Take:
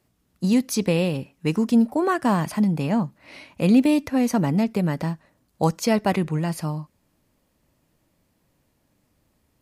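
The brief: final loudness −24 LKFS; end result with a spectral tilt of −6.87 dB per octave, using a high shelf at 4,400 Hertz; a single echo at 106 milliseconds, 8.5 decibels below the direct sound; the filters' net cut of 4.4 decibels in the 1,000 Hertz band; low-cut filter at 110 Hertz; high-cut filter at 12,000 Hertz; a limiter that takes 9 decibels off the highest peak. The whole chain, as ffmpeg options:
ffmpeg -i in.wav -af "highpass=110,lowpass=12000,equalizer=frequency=1000:width_type=o:gain=-5.5,highshelf=frequency=4400:gain=-7,alimiter=limit=-17dB:level=0:latency=1,aecho=1:1:106:0.376,volume=2dB" out.wav

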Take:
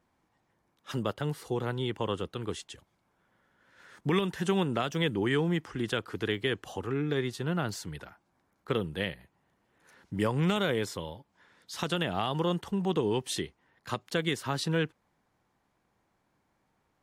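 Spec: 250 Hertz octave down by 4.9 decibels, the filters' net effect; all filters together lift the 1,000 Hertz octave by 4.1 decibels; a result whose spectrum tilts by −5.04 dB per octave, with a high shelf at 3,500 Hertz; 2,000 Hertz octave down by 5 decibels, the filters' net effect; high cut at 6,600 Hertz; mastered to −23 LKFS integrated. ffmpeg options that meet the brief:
ffmpeg -i in.wav -af "lowpass=6600,equalizer=frequency=250:width_type=o:gain=-8.5,equalizer=frequency=1000:width_type=o:gain=8.5,equalizer=frequency=2000:width_type=o:gain=-7.5,highshelf=frequency=3500:gain=-8.5,volume=10.5dB" out.wav

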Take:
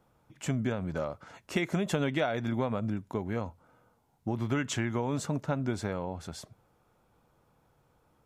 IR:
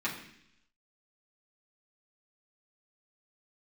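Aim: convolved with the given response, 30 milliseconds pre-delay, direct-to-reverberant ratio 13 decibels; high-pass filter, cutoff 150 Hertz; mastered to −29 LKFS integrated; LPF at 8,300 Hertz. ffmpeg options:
-filter_complex "[0:a]highpass=150,lowpass=8300,asplit=2[link_01][link_02];[1:a]atrim=start_sample=2205,adelay=30[link_03];[link_02][link_03]afir=irnorm=-1:irlink=0,volume=-20dB[link_04];[link_01][link_04]amix=inputs=2:normalize=0,volume=4.5dB"

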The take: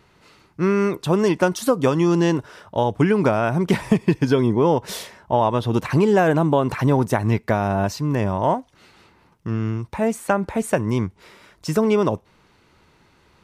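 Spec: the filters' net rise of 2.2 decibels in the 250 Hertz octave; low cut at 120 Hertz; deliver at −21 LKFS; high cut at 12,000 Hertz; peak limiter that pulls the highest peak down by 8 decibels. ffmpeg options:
ffmpeg -i in.wav -af "highpass=120,lowpass=12000,equalizer=frequency=250:width_type=o:gain=3.5,volume=1dB,alimiter=limit=-9.5dB:level=0:latency=1" out.wav

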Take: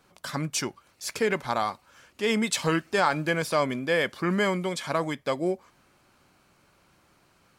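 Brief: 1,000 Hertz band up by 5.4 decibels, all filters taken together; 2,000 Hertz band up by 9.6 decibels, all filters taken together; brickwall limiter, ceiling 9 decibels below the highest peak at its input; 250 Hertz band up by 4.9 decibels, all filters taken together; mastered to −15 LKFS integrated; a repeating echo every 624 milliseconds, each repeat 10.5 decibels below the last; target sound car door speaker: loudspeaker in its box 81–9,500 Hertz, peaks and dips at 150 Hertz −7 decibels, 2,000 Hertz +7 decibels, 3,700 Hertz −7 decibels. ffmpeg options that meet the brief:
ffmpeg -i in.wav -af "equalizer=frequency=250:width_type=o:gain=7.5,equalizer=frequency=1000:width_type=o:gain=4.5,equalizer=frequency=2000:width_type=o:gain=6,alimiter=limit=-14.5dB:level=0:latency=1,highpass=81,equalizer=frequency=150:width_type=q:width=4:gain=-7,equalizer=frequency=2000:width_type=q:width=4:gain=7,equalizer=frequency=3700:width_type=q:width=4:gain=-7,lowpass=frequency=9500:width=0.5412,lowpass=frequency=9500:width=1.3066,aecho=1:1:624|1248|1872:0.299|0.0896|0.0269,volume=10dB" out.wav

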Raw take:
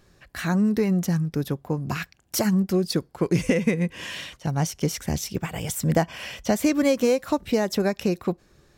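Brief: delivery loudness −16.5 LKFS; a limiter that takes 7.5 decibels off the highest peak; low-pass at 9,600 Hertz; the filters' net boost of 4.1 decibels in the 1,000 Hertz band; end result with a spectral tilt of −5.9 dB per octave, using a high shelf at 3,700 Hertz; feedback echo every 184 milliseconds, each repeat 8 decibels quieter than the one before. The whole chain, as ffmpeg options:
ffmpeg -i in.wav -af "lowpass=9600,equalizer=frequency=1000:width_type=o:gain=6,highshelf=frequency=3700:gain=-8,alimiter=limit=-13.5dB:level=0:latency=1,aecho=1:1:184|368|552|736|920:0.398|0.159|0.0637|0.0255|0.0102,volume=8.5dB" out.wav

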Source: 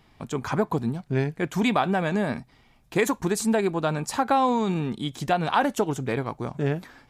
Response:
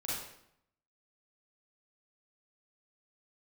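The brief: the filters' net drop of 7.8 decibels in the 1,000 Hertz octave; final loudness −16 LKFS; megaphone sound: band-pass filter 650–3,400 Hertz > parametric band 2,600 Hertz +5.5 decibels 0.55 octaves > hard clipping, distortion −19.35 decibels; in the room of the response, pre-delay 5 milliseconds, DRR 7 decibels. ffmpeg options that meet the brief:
-filter_complex "[0:a]equalizer=frequency=1000:width_type=o:gain=-9,asplit=2[link_01][link_02];[1:a]atrim=start_sample=2205,adelay=5[link_03];[link_02][link_03]afir=irnorm=-1:irlink=0,volume=-10dB[link_04];[link_01][link_04]amix=inputs=2:normalize=0,highpass=650,lowpass=3400,equalizer=frequency=2600:width_type=o:width=0.55:gain=5.5,asoftclip=type=hard:threshold=-19.5dB,volume=17dB"

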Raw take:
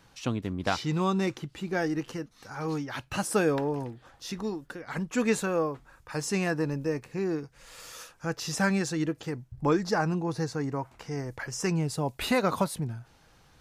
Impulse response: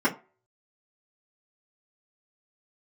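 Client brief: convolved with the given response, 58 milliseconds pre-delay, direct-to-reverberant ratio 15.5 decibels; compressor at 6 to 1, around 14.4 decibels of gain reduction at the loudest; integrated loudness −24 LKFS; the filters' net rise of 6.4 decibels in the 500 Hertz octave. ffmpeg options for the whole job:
-filter_complex "[0:a]equalizer=frequency=500:width_type=o:gain=7.5,acompressor=threshold=-31dB:ratio=6,asplit=2[link_01][link_02];[1:a]atrim=start_sample=2205,adelay=58[link_03];[link_02][link_03]afir=irnorm=-1:irlink=0,volume=-29.5dB[link_04];[link_01][link_04]amix=inputs=2:normalize=0,volume=11.5dB"

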